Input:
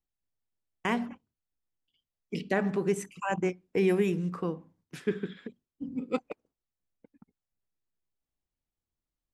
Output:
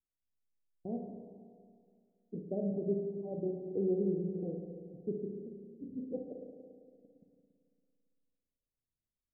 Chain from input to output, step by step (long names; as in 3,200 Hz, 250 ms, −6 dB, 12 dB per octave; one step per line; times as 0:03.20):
Butterworth low-pass 690 Hz 72 dB per octave
spring reverb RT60 2.2 s, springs 35/56 ms, chirp 40 ms, DRR 2 dB
level −8 dB